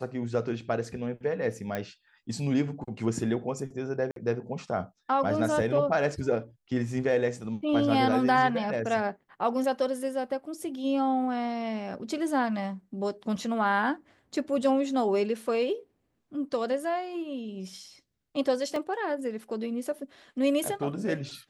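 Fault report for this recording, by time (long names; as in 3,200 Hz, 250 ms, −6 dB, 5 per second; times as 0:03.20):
0:01.75: click −18 dBFS
0:04.11–0:04.16: drop-out 52 ms
0:18.76: drop-out 2.3 ms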